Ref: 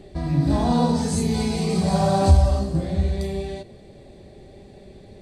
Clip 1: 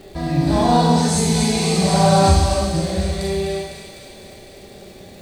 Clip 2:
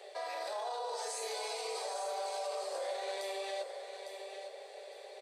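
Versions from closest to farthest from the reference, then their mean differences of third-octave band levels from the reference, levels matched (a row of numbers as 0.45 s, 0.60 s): 1, 2; 5.5 dB, 17.5 dB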